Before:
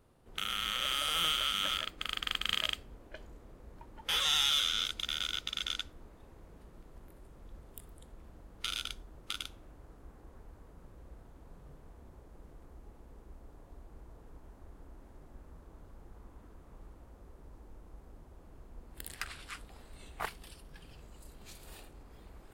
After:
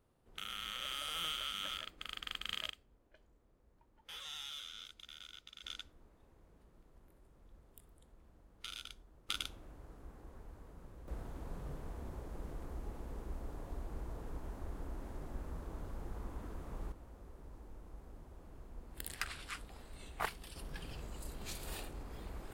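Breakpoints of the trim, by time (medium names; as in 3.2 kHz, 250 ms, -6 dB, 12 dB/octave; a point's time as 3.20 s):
-8.5 dB
from 2.70 s -17.5 dB
from 5.64 s -10 dB
from 9.29 s 0 dB
from 11.08 s +8.5 dB
from 16.92 s 0 dB
from 20.56 s +6.5 dB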